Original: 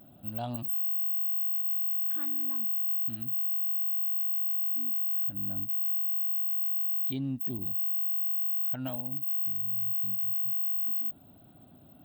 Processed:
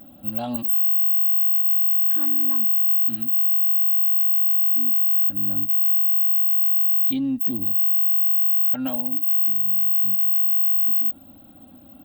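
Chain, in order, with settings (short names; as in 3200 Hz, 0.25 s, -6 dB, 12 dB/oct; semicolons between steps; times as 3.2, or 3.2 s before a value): comb 3.7 ms, depth 73%; gain +6 dB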